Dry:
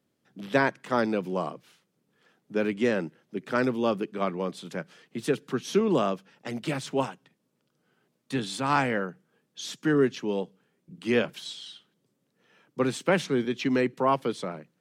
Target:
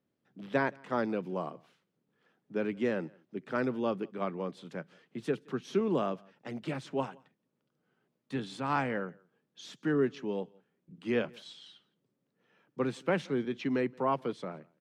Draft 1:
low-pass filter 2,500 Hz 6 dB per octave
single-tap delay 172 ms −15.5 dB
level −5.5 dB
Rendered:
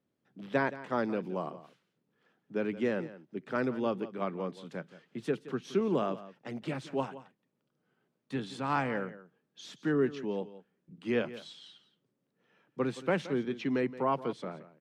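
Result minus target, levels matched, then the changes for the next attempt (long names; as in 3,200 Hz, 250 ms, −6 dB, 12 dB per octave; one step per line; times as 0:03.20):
echo-to-direct +11.5 dB
change: single-tap delay 172 ms −27 dB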